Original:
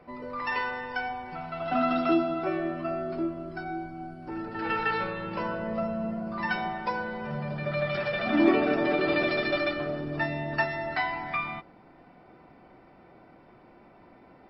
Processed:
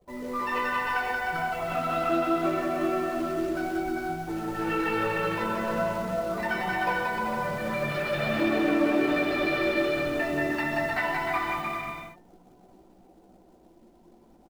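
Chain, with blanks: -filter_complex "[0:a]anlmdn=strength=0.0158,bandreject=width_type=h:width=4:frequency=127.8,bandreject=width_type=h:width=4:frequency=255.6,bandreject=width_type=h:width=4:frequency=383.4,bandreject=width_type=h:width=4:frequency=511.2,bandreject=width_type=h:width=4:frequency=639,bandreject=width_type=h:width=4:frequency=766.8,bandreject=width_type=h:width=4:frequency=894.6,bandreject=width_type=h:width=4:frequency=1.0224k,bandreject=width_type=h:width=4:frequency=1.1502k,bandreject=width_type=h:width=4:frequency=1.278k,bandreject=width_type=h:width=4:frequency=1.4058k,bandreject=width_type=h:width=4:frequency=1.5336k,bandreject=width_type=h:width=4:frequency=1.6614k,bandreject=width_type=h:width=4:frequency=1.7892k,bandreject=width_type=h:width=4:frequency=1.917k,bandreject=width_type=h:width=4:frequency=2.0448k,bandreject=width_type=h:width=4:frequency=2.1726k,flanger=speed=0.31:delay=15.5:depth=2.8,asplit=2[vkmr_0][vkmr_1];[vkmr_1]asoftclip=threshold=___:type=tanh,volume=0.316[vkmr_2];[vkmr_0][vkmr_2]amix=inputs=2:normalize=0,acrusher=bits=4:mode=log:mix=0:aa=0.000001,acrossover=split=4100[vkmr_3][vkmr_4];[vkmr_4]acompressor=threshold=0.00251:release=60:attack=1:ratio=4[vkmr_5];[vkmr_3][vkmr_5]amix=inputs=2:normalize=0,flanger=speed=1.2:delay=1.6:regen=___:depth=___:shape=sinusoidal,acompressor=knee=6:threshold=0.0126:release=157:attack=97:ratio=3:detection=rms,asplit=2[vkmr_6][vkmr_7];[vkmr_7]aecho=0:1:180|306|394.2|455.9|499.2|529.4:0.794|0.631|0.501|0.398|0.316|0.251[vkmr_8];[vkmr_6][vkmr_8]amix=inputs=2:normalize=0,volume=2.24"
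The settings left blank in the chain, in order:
0.0422, -39, 4.4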